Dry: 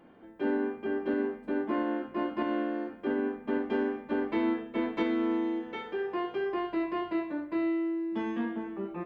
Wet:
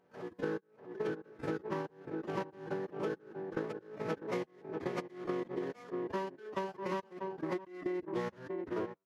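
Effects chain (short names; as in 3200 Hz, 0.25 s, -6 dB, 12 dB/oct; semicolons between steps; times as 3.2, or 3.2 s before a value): median filter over 15 samples; HPF 350 Hz 12 dB/oct; step gate ".x.x...x." 105 bpm -60 dB; bell 1000 Hz -3 dB 0.41 oct; on a send: tape echo 0.642 s, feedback 61%, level -13 dB, low-pass 1300 Hz; on the sum: compressor 12:1, threshold -45 dBFS, peak gain reduction 16.5 dB; formant-preserving pitch shift -10.5 st; backwards sustainer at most 110 dB/s; gain +12.5 dB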